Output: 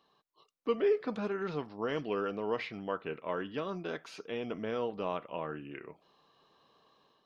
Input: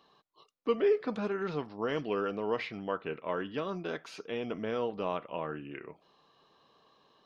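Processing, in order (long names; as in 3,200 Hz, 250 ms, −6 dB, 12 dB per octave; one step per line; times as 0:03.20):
automatic gain control gain up to 4.5 dB
level −6 dB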